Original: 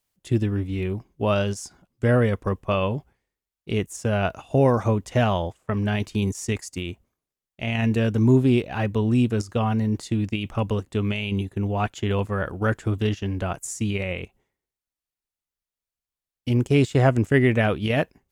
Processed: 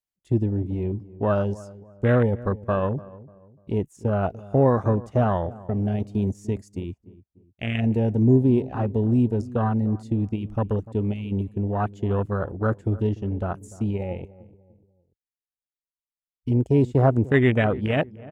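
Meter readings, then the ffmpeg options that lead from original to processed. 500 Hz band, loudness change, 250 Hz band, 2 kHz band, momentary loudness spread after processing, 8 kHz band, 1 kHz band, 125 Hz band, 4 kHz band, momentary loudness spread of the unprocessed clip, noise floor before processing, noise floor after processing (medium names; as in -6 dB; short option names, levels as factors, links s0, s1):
0.0 dB, 0.0 dB, 0.0 dB, -4.0 dB, 11 LU, under -15 dB, -0.5 dB, 0.0 dB, -9.5 dB, 9 LU, under -85 dBFS, under -85 dBFS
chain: -filter_complex "[0:a]afwtdn=0.0501,asplit=2[s0][s1];[s1]adelay=295,lowpass=f=920:p=1,volume=0.126,asplit=2[s2][s3];[s3]adelay=295,lowpass=f=920:p=1,volume=0.4,asplit=2[s4][s5];[s5]adelay=295,lowpass=f=920:p=1,volume=0.4[s6];[s0][s2][s4][s6]amix=inputs=4:normalize=0"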